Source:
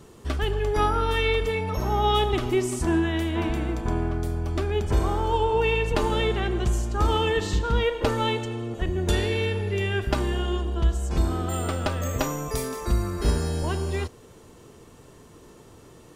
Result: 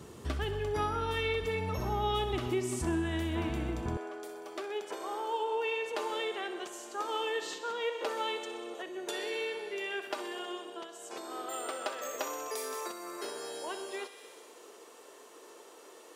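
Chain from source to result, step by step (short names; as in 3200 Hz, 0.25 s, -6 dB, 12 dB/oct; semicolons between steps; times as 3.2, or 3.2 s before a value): thinning echo 63 ms, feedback 78%, high-pass 1000 Hz, level -12.5 dB; compressor 2:1, threshold -35 dBFS, peak gain reduction 10.5 dB; HPF 60 Hz 24 dB/oct, from 3.97 s 390 Hz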